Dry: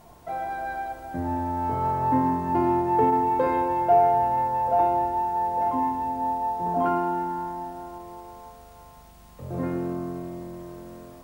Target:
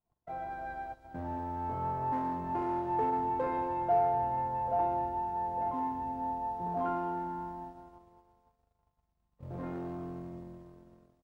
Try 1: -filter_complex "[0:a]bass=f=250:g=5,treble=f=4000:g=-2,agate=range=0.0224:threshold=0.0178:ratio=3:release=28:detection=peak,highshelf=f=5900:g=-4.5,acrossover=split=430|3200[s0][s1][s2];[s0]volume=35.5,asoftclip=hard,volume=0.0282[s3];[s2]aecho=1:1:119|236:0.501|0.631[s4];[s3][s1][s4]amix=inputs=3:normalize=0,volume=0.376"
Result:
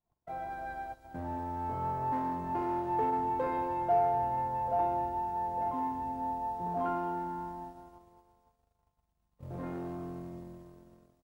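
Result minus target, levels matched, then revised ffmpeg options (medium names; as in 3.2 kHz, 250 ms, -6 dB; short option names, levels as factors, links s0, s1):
8 kHz band +5.5 dB
-filter_complex "[0:a]bass=f=250:g=5,treble=f=4000:g=-2,agate=range=0.0224:threshold=0.0178:ratio=3:release=28:detection=peak,highshelf=f=5900:g=-14.5,acrossover=split=430|3200[s0][s1][s2];[s0]volume=35.5,asoftclip=hard,volume=0.0282[s3];[s2]aecho=1:1:119|236:0.501|0.631[s4];[s3][s1][s4]amix=inputs=3:normalize=0,volume=0.376"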